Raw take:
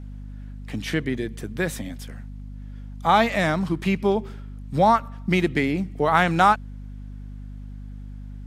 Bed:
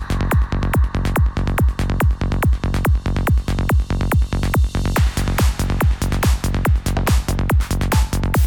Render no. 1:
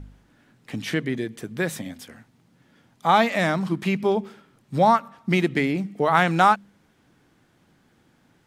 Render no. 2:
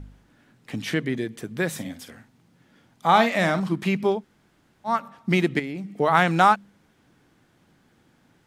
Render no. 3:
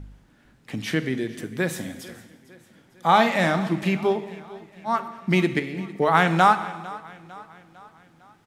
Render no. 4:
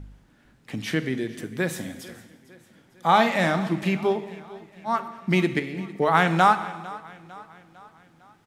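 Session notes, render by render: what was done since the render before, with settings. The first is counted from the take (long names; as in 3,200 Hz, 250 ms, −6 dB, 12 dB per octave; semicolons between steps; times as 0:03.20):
hum removal 50 Hz, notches 5
0:01.70–0:03.60: double-tracking delay 47 ms −11 dB; 0:04.17–0:04.92: fill with room tone, crossfade 0.16 s; 0:05.59–0:05.99: downward compressor 2.5 to 1, threshold −32 dBFS
repeating echo 452 ms, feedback 51%, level −19.5 dB; reverb whose tail is shaped and stops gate 420 ms falling, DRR 10.5 dB
level −1 dB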